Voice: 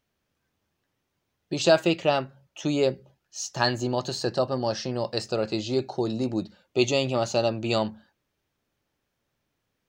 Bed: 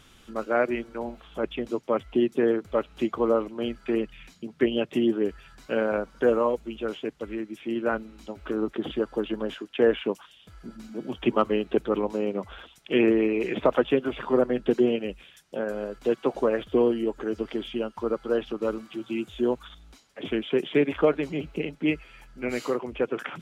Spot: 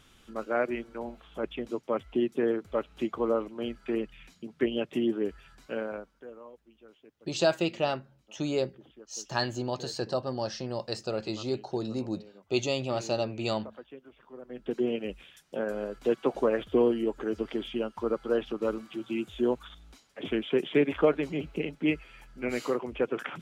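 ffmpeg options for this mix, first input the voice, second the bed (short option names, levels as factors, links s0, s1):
-filter_complex "[0:a]adelay=5750,volume=0.531[s0];[1:a]volume=7.94,afade=t=out:st=5.5:d=0.74:silence=0.1,afade=t=in:st=14.42:d=0.77:silence=0.0749894[s1];[s0][s1]amix=inputs=2:normalize=0"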